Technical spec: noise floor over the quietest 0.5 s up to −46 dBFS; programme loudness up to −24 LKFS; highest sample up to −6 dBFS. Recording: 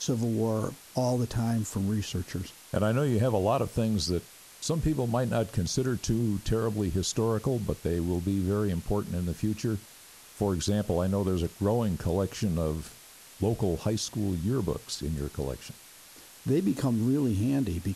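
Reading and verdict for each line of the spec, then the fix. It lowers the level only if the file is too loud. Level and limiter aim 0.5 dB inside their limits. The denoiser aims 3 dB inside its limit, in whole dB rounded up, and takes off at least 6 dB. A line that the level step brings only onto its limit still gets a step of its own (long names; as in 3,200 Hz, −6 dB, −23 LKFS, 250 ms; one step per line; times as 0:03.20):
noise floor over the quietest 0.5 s −51 dBFS: in spec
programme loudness −29.5 LKFS: in spec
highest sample −14.5 dBFS: in spec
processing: no processing needed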